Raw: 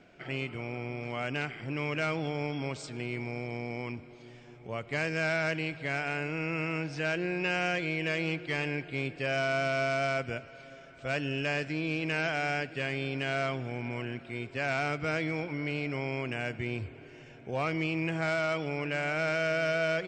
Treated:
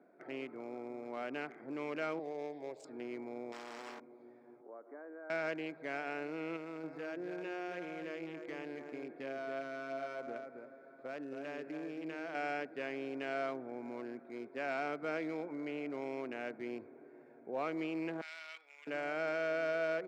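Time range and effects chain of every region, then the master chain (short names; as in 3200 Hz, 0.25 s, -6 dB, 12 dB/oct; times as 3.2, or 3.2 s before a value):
2.19–2.85 high shelf 4200 Hz +9.5 dB + fixed phaser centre 560 Hz, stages 4 + Doppler distortion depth 0.17 ms
3.52–4 flutter echo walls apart 3.7 m, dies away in 0.36 s + spectral compressor 10:1
4.61–5.3 Chebyshev band-pass 280–1600 Hz, order 3 + compressor 2:1, threshold -47 dBFS
6.56–12.35 compressor, threshold -32 dBFS + echo 0.275 s -5.5 dB
18.21–18.87 resonant high-pass 3000 Hz, resonance Q 1.7 + flutter echo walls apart 11.1 m, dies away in 0.28 s
whole clip: Wiener smoothing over 15 samples; HPF 240 Hz 24 dB/oct; high shelf 2400 Hz -11.5 dB; gain -3.5 dB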